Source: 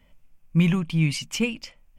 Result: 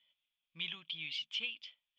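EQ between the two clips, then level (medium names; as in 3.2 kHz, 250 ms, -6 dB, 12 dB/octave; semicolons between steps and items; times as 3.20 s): band-pass filter 3.4 kHz, Q 12; distance through air 160 m; +10.0 dB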